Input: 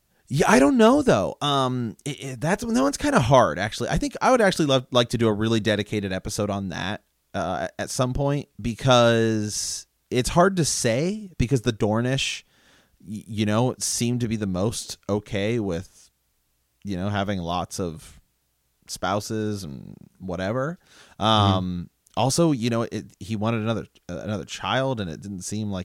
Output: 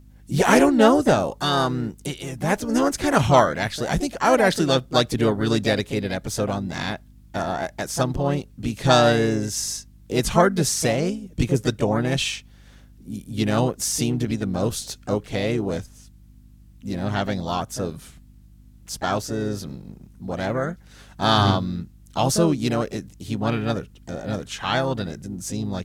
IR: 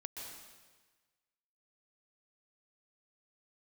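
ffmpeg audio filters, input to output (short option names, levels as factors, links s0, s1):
-filter_complex "[0:a]aeval=exprs='val(0)+0.00398*(sin(2*PI*50*n/s)+sin(2*PI*2*50*n/s)/2+sin(2*PI*3*50*n/s)/3+sin(2*PI*4*50*n/s)/4+sin(2*PI*5*50*n/s)/5)':c=same,asplit=2[s0][s1];[s1]asetrate=55563,aresample=44100,atempo=0.793701,volume=0.447[s2];[s0][s2]amix=inputs=2:normalize=0"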